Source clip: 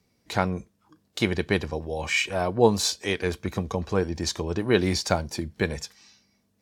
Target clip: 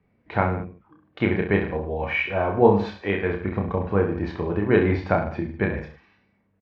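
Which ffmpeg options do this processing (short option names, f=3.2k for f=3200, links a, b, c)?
-af "lowpass=f=2.3k:w=0.5412,lowpass=f=2.3k:w=1.3066,aecho=1:1:30|64.5|104.2|149.8|202.3:0.631|0.398|0.251|0.158|0.1,volume=1.5dB"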